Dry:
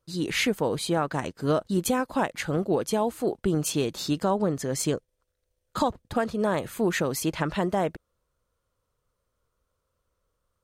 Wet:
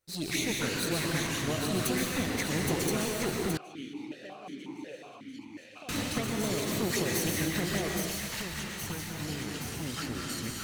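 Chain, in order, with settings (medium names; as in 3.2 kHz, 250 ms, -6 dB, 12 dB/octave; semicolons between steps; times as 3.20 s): comb filter that takes the minimum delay 0.5 ms; tilt EQ +2 dB/octave; compression 4:1, threshold -28 dBFS, peak gain reduction 7 dB; touch-sensitive flanger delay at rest 11.6 ms, full sweep at -27 dBFS; feedback echo behind a high-pass 820 ms, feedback 65%, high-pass 1.9 kHz, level -4 dB; plate-style reverb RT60 1.5 s, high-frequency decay 0.75×, pre-delay 110 ms, DRR -0.5 dB; ever faster or slower copies 177 ms, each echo -6 st, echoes 2, each echo -6 dB; 3.57–5.89 s: stepped vowel filter 5.5 Hz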